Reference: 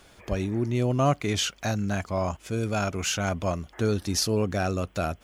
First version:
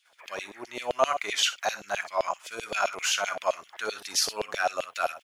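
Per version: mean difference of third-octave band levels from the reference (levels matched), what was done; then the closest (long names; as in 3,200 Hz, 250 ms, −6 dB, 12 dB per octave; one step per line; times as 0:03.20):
10.5 dB: noise gate −52 dBFS, range −15 dB
on a send: ambience of single reflections 50 ms −16.5 dB, 61 ms −13 dB
on the sum: auto-filter high-pass saw down 7.7 Hz 560–3,500 Hz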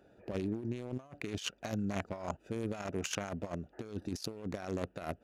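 5.5 dB: adaptive Wiener filter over 41 samples
high-pass filter 350 Hz 6 dB per octave
compressor whose output falls as the input rises −35 dBFS, ratio −0.5
level −2.5 dB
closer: second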